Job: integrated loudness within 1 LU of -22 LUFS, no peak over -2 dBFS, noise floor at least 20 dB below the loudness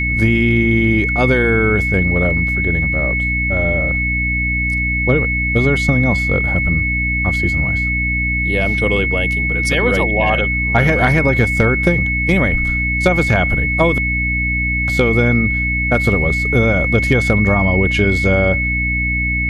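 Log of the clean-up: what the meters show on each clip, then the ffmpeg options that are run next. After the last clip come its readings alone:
hum 60 Hz; harmonics up to 300 Hz; hum level -19 dBFS; steady tone 2200 Hz; tone level -17 dBFS; loudness -15.0 LUFS; peak -1.0 dBFS; loudness target -22.0 LUFS
-> -af "bandreject=f=60:t=h:w=6,bandreject=f=120:t=h:w=6,bandreject=f=180:t=h:w=6,bandreject=f=240:t=h:w=6,bandreject=f=300:t=h:w=6"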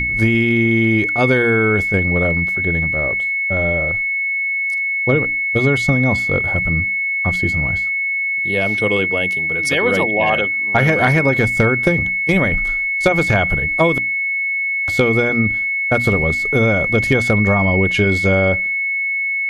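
hum none; steady tone 2200 Hz; tone level -17 dBFS
-> -af "bandreject=f=2.2k:w=30"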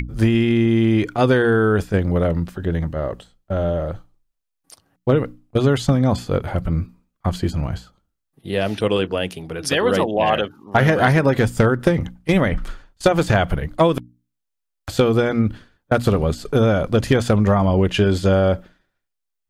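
steady tone none; loudness -19.5 LUFS; peak -3.5 dBFS; loudness target -22.0 LUFS
-> -af "volume=-2.5dB"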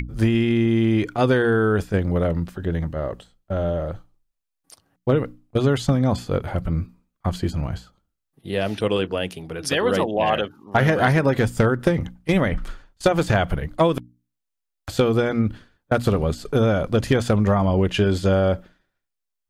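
loudness -22.0 LUFS; peak -6.0 dBFS; noise floor -81 dBFS

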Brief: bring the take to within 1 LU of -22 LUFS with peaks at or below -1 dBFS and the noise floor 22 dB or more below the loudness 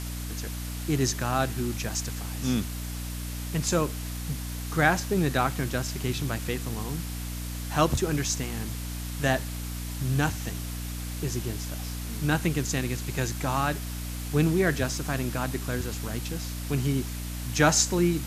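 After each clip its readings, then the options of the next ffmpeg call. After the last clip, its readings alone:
hum 60 Hz; harmonics up to 300 Hz; hum level -32 dBFS; noise floor -34 dBFS; noise floor target -51 dBFS; loudness -28.5 LUFS; peak -6.0 dBFS; loudness target -22.0 LUFS
-> -af "bandreject=f=60:t=h:w=6,bandreject=f=120:t=h:w=6,bandreject=f=180:t=h:w=6,bandreject=f=240:t=h:w=6,bandreject=f=300:t=h:w=6"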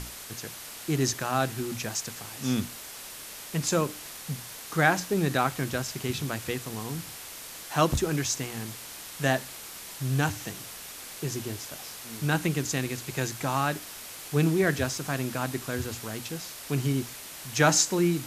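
hum none; noise floor -42 dBFS; noise floor target -52 dBFS
-> -af "afftdn=nr=10:nf=-42"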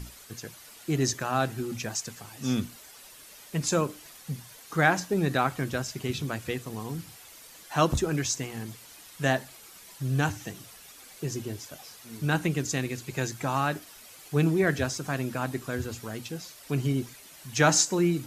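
noise floor -50 dBFS; noise floor target -51 dBFS
-> -af "afftdn=nr=6:nf=-50"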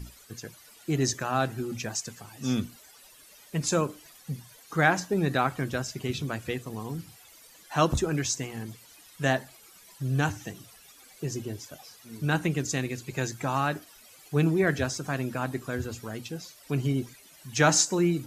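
noise floor -54 dBFS; loudness -29.0 LUFS; peak -6.5 dBFS; loudness target -22.0 LUFS
-> -af "volume=7dB,alimiter=limit=-1dB:level=0:latency=1"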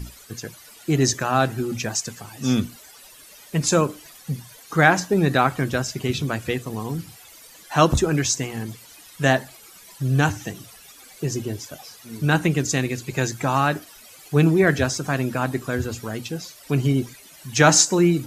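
loudness -22.0 LUFS; peak -1.0 dBFS; noise floor -47 dBFS

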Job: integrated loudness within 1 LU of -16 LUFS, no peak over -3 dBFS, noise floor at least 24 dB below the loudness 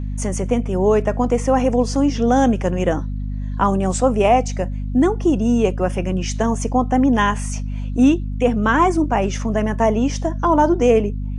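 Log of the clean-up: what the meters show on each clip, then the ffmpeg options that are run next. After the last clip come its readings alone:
hum 50 Hz; harmonics up to 250 Hz; hum level -22 dBFS; loudness -18.5 LUFS; peak -3.5 dBFS; loudness target -16.0 LUFS
-> -af "bandreject=f=50:t=h:w=6,bandreject=f=100:t=h:w=6,bandreject=f=150:t=h:w=6,bandreject=f=200:t=h:w=6,bandreject=f=250:t=h:w=6"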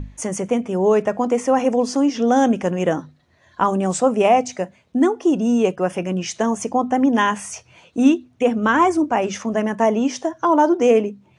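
hum none; loudness -19.0 LUFS; peak -4.0 dBFS; loudness target -16.0 LUFS
-> -af "volume=3dB,alimiter=limit=-3dB:level=0:latency=1"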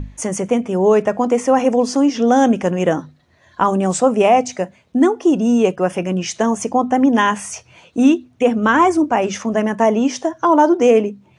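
loudness -16.0 LUFS; peak -3.0 dBFS; noise floor -54 dBFS

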